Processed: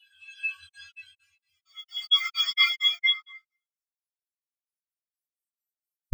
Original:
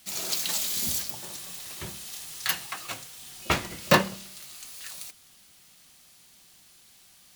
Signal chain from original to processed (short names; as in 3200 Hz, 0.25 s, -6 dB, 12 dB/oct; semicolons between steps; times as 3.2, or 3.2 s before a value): varispeed +20%; passive tone stack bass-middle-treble 10-0-10; reverb RT60 0.25 s, pre-delay 4 ms, DRR 1 dB; Paulstretch 5.2×, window 0.50 s, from 2.81; high shelf 4000 Hz +8.5 dB; crackling interface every 0.23 s, samples 2048, zero, from 0.69; spectral expander 4:1